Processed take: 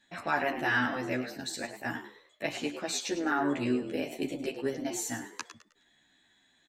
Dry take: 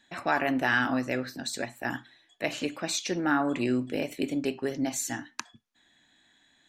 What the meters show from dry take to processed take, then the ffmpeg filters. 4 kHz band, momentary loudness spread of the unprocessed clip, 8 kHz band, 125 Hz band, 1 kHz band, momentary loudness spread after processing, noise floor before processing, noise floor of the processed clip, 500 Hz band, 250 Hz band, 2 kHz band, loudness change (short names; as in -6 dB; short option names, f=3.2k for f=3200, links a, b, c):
-2.5 dB, 9 LU, -2.5 dB, -3.5 dB, -2.5 dB, 10 LU, -66 dBFS, -68 dBFS, -2.0 dB, -4.0 dB, -2.5 dB, -3.0 dB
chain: -filter_complex "[0:a]asplit=5[a][b][c][d][e];[b]adelay=104,afreqshift=87,volume=-11dB[f];[c]adelay=208,afreqshift=174,volume=-20.6dB[g];[d]adelay=312,afreqshift=261,volume=-30.3dB[h];[e]adelay=416,afreqshift=348,volume=-39.9dB[i];[a][f][g][h][i]amix=inputs=5:normalize=0,asplit=2[j][k];[k]adelay=11.9,afreqshift=-2.8[l];[j][l]amix=inputs=2:normalize=1"